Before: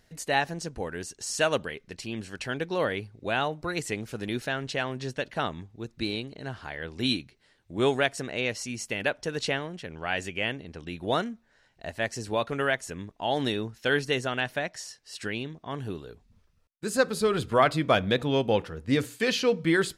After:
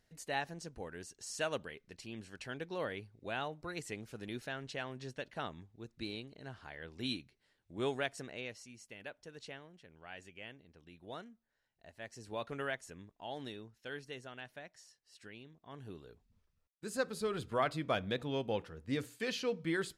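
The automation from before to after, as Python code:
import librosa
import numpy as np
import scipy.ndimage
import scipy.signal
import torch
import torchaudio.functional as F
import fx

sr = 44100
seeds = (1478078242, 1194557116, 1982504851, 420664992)

y = fx.gain(x, sr, db=fx.line((8.24, -11.5), (8.74, -20.0), (11.93, -20.0), (12.51, -11.0), (13.8, -19.5), (15.44, -19.5), (16.06, -11.5)))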